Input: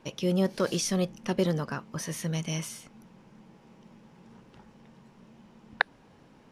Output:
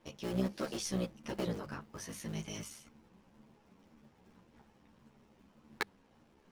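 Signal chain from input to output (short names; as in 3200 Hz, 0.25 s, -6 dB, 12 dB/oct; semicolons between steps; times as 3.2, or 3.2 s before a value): cycle switcher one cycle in 3, muted; notches 50/100/150/200 Hz; ensemble effect; gain -4.5 dB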